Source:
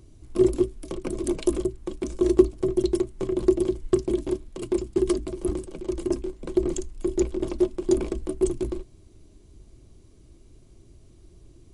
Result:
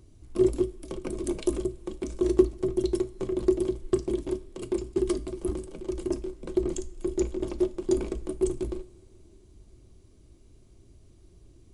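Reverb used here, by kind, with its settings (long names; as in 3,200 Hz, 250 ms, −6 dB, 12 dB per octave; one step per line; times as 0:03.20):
coupled-rooms reverb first 0.37 s, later 3.7 s, from −20 dB, DRR 12.5 dB
level −3.5 dB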